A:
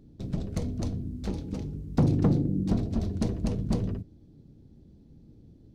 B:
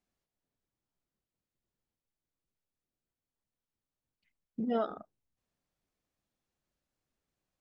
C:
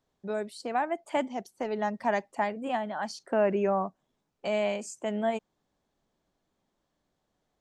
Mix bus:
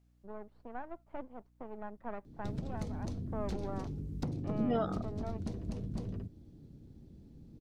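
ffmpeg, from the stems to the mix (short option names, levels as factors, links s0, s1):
-filter_complex "[0:a]acompressor=threshold=0.02:ratio=8,adelay=2250,volume=0.891[s0];[1:a]acompressor=threshold=0.0251:ratio=3,aeval=exprs='val(0)+0.000355*(sin(2*PI*60*n/s)+sin(2*PI*2*60*n/s)/2+sin(2*PI*3*60*n/s)/3+sin(2*PI*4*60*n/s)/4+sin(2*PI*5*60*n/s)/5)':c=same,volume=1.33[s1];[2:a]aeval=exprs='max(val(0),0)':c=same,lowpass=1200,volume=0.299[s2];[s0][s1][s2]amix=inputs=3:normalize=0"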